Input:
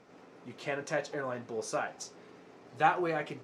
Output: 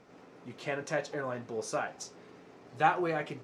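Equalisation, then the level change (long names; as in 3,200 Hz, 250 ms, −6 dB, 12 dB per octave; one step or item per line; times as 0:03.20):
low-shelf EQ 100 Hz +6 dB
0.0 dB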